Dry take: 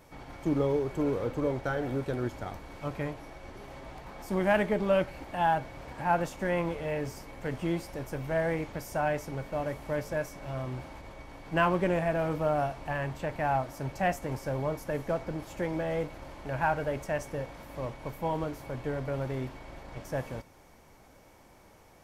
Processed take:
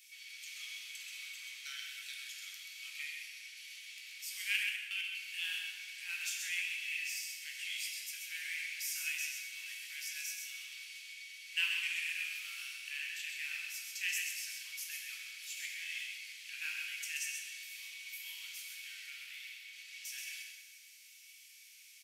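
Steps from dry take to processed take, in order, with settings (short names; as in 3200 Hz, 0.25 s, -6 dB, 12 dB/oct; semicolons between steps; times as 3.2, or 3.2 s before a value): elliptic high-pass 2400 Hz, stop band 70 dB; 4.56–5.15 level quantiser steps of 23 dB; 19.1–19.73 bell 6900 Hz -5.5 dB 1.8 oct; on a send: echo 0.131 s -5.5 dB; on the sum: plate-style reverb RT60 1.5 s, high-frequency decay 0.8×, DRR 1 dB; gain +6.5 dB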